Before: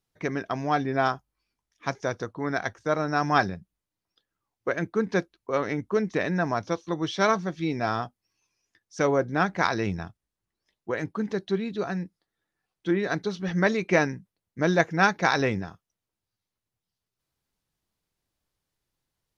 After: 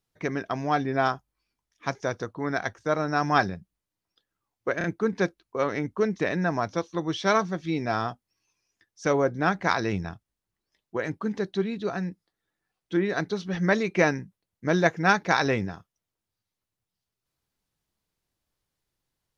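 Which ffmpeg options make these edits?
-filter_complex "[0:a]asplit=3[a][b][c];[a]atrim=end=4.812[d];[b]atrim=start=4.778:end=4.812[e];[c]atrim=start=4.778[f];[d][e]acrossfade=d=0.004:c1=hsin:c2=hsin[g];[g][f]acrossfade=d=0.004:c1=hsin:c2=hsin"

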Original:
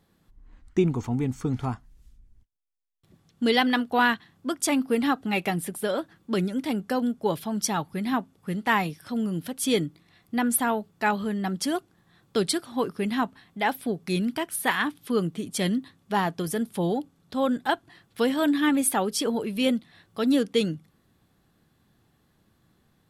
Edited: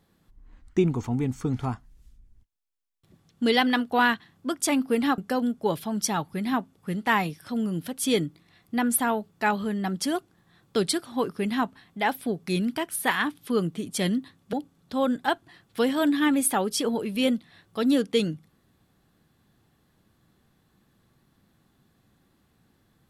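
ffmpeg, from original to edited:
-filter_complex "[0:a]asplit=3[a][b][c];[a]atrim=end=5.182[d];[b]atrim=start=6.778:end=16.132[e];[c]atrim=start=16.938[f];[d][e]acrossfade=d=0.004:c1=hsin:c2=hsin[g];[g][f]acrossfade=d=0.004:c1=hsin:c2=hsin"

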